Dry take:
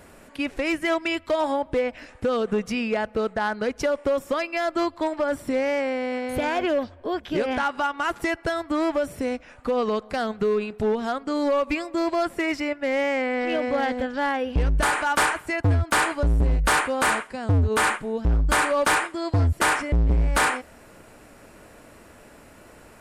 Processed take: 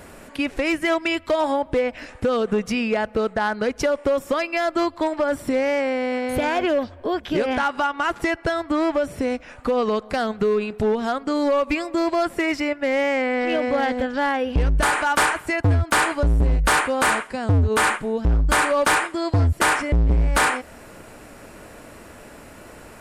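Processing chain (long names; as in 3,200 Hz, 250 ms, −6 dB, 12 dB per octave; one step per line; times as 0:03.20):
0:07.84–0:09.30: high-shelf EQ 11,000 Hz −11 dB
in parallel at 0 dB: downward compressor, threshold −30 dBFS, peak gain reduction 11.5 dB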